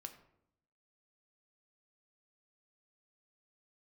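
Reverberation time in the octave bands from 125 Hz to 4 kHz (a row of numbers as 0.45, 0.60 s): 1.0, 0.95, 0.80, 0.70, 0.55, 0.40 s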